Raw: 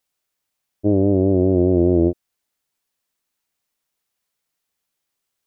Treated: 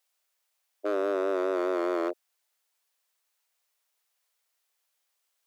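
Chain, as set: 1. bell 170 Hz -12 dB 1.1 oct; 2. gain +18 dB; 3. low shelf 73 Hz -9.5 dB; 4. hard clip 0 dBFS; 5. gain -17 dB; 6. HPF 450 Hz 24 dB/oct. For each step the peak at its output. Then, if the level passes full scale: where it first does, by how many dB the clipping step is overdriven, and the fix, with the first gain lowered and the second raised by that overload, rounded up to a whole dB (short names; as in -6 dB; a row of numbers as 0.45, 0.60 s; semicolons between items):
-10.0, +8.0, +8.0, 0.0, -17.0, -18.5 dBFS; step 2, 8.0 dB; step 2 +10 dB, step 5 -9 dB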